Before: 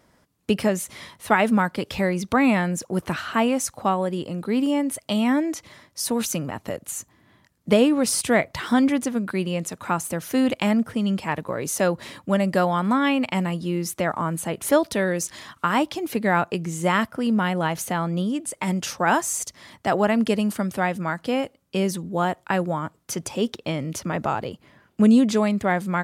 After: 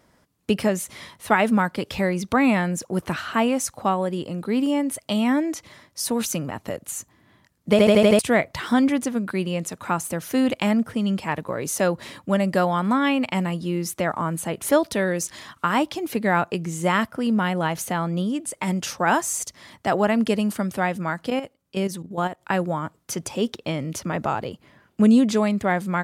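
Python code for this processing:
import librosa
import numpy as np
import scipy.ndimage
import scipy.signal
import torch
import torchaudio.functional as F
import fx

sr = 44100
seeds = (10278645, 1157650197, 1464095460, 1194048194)

y = fx.level_steps(x, sr, step_db=11, at=(21.3, 22.42))
y = fx.edit(y, sr, fx.stutter_over(start_s=7.71, slice_s=0.08, count=6), tone=tone)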